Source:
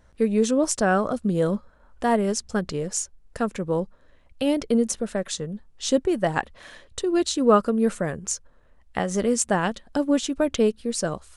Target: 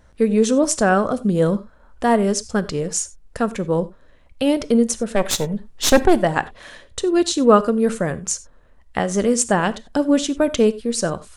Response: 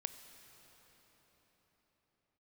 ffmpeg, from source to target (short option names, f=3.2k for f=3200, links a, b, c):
-filter_complex "[0:a]asplit=3[a][b][c];[a]afade=t=out:st=5.15:d=0.02[d];[b]aeval=exprs='0.355*(cos(1*acos(clip(val(0)/0.355,-1,1)))-cos(1*PI/2))+0.0447*(cos(5*acos(clip(val(0)/0.355,-1,1)))-cos(5*PI/2))+0.112*(cos(6*acos(clip(val(0)/0.355,-1,1)))-cos(6*PI/2))':c=same,afade=t=in:st=5.15:d=0.02,afade=t=out:st=6.17:d=0.02[e];[c]afade=t=in:st=6.17:d=0.02[f];[d][e][f]amix=inputs=3:normalize=0[g];[1:a]atrim=start_sample=2205,atrim=end_sample=4410[h];[g][h]afir=irnorm=-1:irlink=0,volume=7dB"